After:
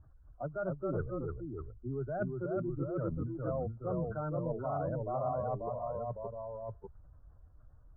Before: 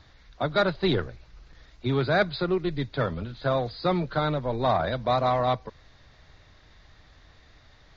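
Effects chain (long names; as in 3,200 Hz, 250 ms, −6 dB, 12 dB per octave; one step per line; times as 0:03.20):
expanding power law on the bin magnitudes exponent 1.9
Chebyshev low-pass filter 1,500 Hz, order 6
reversed playback
downward compressor, threshold −31 dBFS, peak gain reduction 11.5 dB
reversed playback
delay with pitch and tempo change per echo 237 ms, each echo −1 semitone, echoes 2
level −3 dB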